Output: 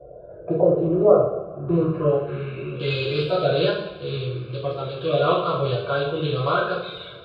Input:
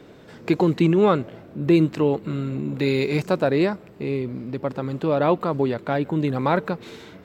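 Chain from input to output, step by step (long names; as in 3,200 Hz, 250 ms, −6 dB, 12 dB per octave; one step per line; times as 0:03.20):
spectral magnitudes quantised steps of 30 dB
phaser with its sweep stopped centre 1,300 Hz, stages 8
coupled-rooms reverb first 0.63 s, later 1.9 s, from −16 dB, DRR −6 dB
low-pass filter sweep 640 Hz → 3,800 Hz, 0:01.49–0:02.96
level −3.5 dB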